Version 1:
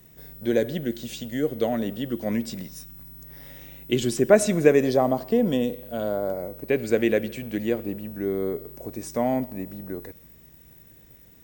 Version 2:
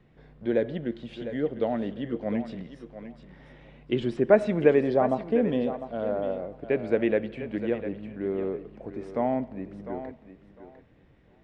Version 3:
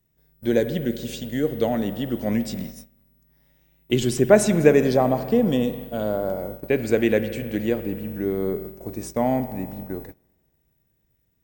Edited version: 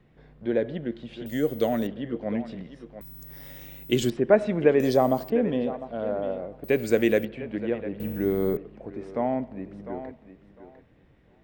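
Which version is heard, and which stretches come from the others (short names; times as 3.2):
2
1.26–1.87 from 1
3.01–4.1 from 1
4.8–5.3 from 1
6.64–7.25 from 1
8–8.57 from 3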